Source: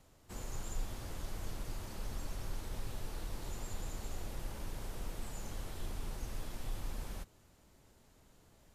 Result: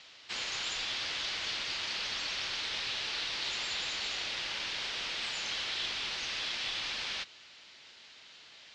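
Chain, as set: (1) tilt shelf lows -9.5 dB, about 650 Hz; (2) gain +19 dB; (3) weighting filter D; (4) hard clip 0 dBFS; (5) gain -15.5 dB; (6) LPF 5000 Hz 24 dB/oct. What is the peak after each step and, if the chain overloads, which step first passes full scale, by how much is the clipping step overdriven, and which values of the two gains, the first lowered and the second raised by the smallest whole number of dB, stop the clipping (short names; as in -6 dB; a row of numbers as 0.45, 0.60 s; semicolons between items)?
-29.5, -10.5, -3.5, -3.5, -19.0, -22.5 dBFS; no overload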